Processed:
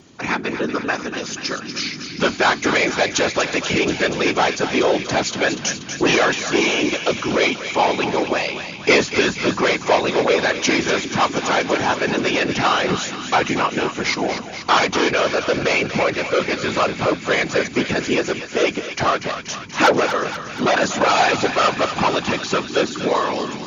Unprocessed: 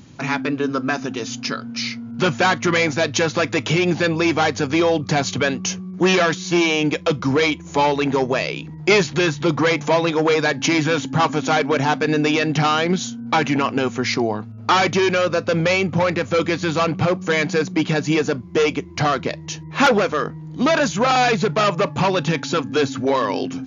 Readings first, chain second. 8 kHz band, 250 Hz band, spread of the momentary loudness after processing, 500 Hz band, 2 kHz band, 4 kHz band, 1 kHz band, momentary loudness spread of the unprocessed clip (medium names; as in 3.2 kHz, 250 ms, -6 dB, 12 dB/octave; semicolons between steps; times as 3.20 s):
no reading, -2.5 dB, 7 LU, 0.0 dB, +2.0 dB, +2.0 dB, +1.0 dB, 7 LU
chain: whisper effect; high-pass 270 Hz 6 dB/octave; thinning echo 240 ms, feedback 74%, high-pass 970 Hz, level -8 dB; trim +1 dB